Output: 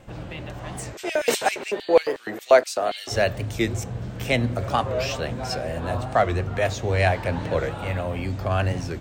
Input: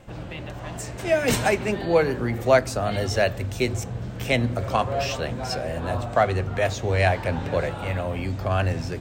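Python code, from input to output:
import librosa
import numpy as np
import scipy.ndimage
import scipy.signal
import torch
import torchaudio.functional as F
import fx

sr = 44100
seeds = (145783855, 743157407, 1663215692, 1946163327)

y = fx.filter_lfo_highpass(x, sr, shape='square', hz=fx.line((0.93, 9.2), (3.11, 3.0)), low_hz=420.0, high_hz=3200.0, q=1.5, at=(0.93, 3.11), fade=0.02)
y = fx.record_warp(y, sr, rpm=45.0, depth_cents=160.0)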